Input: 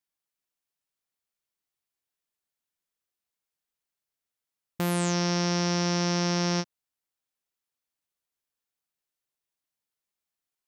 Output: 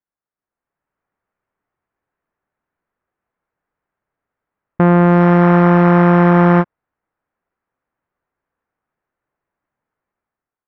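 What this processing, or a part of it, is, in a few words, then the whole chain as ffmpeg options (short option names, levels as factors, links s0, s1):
action camera in a waterproof case: -af "lowpass=f=1700:w=0.5412,lowpass=f=1700:w=1.3066,dynaudnorm=f=190:g=7:m=5.01,volume=1.41" -ar 44100 -c:a aac -b:a 48k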